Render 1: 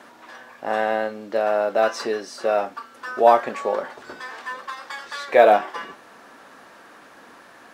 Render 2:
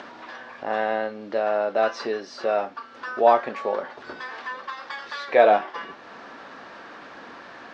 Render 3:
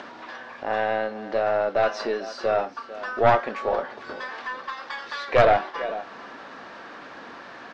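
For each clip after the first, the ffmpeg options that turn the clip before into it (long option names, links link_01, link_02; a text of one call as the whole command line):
ffmpeg -i in.wav -filter_complex "[0:a]lowpass=frequency=5200:width=0.5412,lowpass=frequency=5200:width=1.3066,asplit=2[link_01][link_02];[link_02]acompressor=mode=upward:threshold=-23dB:ratio=2.5,volume=-2dB[link_03];[link_01][link_03]amix=inputs=2:normalize=0,volume=-7.5dB" out.wav
ffmpeg -i in.wav -af "aecho=1:1:447:0.168,aeval=exprs='0.668*(cos(1*acos(clip(val(0)/0.668,-1,1)))-cos(1*PI/2))+0.335*(cos(2*acos(clip(val(0)/0.668,-1,1)))-cos(2*PI/2))+0.0841*(cos(5*acos(clip(val(0)/0.668,-1,1)))-cos(5*PI/2))':channel_layout=same,volume=-3.5dB" out.wav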